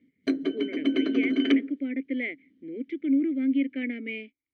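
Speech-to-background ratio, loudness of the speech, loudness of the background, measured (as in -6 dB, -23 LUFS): -4.0 dB, -30.5 LUFS, -26.5 LUFS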